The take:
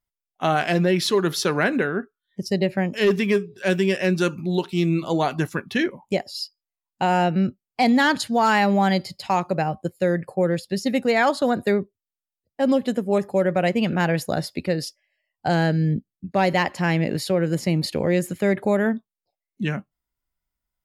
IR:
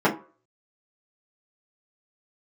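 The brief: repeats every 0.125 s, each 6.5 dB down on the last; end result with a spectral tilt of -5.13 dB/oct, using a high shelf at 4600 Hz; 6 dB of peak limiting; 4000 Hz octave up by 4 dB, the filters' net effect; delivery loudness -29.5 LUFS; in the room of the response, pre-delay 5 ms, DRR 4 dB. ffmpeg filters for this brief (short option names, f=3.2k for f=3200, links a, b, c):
-filter_complex "[0:a]equalizer=f=4k:t=o:g=3,highshelf=f=4.6k:g=4,alimiter=limit=-13.5dB:level=0:latency=1,aecho=1:1:125|250|375|500|625|750:0.473|0.222|0.105|0.0491|0.0231|0.0109,asplit=2[a][b];[1:a]atrim=start_sample=2205,adelay=5[c];[b][c]afir=irnorm=-1:irlink=0,volume=-22dB[d];[a][d]amix=inputs=2:normalize=0,volume=-9dB"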